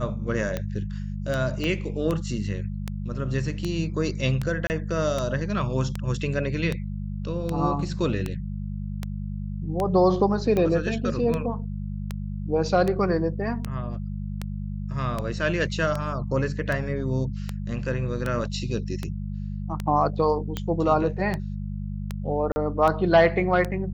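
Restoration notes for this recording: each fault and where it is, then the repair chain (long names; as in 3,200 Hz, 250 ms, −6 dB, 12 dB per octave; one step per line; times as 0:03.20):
mains hum 50 Hz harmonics 4 −31 dBFS
scratch tick 78 rpm −14 dBFS
0:01.64: click −16 dBFS
0:04.67–0:04.70: drop-out 29 ms
0:22.52–0:22.56: drop-out 40 ms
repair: click removal
hum removal 50 Hz, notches 4
repair the gap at 0:04.67, 29 ms
repair the gap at 0:22.52, 40 ms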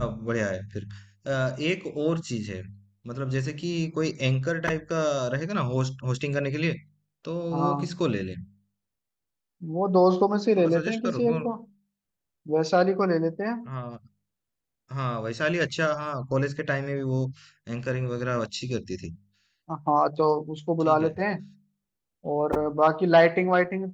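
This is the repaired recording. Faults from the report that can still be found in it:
0:01.64: click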